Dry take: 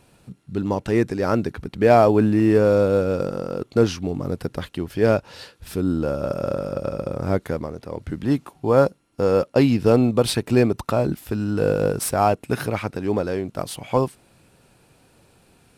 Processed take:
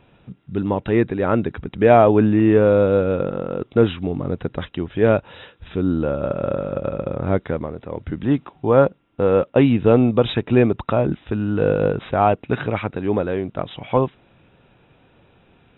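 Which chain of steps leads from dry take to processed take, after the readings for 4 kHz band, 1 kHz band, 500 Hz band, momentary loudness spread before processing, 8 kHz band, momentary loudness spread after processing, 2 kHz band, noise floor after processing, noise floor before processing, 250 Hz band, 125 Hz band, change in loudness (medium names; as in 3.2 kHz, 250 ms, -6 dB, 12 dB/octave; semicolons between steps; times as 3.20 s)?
-1.5 dB, +2.0 dB, +2.0 dB, 13 LU, under -40 dB, 12 LU, +2.0 dB, -56 dBFS, -58 dBFS, +2.0 dB, +2.0 dB, +2.0 dB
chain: brick-wall FIR low-pass 3.9 kHz; trim +2 dB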